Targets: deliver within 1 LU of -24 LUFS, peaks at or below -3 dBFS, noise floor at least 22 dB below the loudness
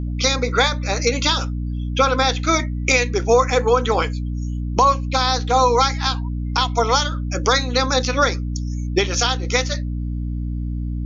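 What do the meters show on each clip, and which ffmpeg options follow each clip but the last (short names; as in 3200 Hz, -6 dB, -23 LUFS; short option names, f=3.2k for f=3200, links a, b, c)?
hum 60 Hz; harmonics up to 300 Hz; hum level -22 dBFS; loudness -19.5 LUFS; peak -3.5 dBFS; loudness target -24.0 LUFS
-> -af "bandreject=f=60:t=h:w=6,bandreject=f=120:t=h:w=6,bandreject=f=180:t=h:w=6,bandreject=f=240:t=h:w=6,bandreject=f=300:t=h:w=6"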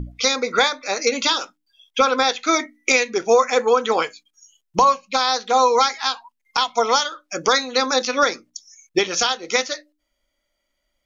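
hum none; loudness -19.5 LUFS; peak -5.0 dBFS; loudness target -24.0 LUFS
-> -af "volume=-4.5dB"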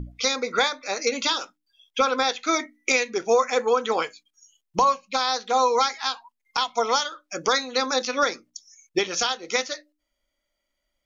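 loudness -24.0 LUFS; peak -9.5 dBFS; noise floor -80 dBFS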